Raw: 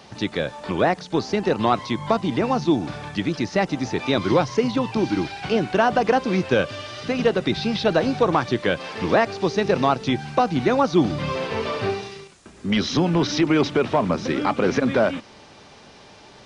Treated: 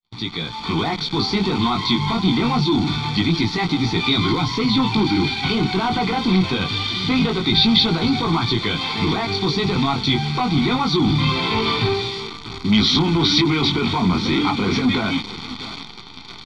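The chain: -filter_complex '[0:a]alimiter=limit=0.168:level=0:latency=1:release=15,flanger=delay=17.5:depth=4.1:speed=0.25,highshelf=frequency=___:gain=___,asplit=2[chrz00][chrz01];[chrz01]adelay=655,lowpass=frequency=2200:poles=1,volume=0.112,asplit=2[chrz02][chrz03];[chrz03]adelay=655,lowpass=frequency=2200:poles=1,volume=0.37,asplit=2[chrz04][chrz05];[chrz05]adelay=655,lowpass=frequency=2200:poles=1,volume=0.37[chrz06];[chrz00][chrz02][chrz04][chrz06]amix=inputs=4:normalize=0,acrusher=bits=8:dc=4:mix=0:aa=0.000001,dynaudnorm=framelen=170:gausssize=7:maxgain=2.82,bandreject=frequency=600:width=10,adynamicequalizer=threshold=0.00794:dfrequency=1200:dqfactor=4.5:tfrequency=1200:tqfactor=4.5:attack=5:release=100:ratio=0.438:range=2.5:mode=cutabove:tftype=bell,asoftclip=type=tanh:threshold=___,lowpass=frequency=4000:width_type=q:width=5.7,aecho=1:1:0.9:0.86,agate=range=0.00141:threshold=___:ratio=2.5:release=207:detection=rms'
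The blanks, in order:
3100, -5.5, 0.188, 0.0251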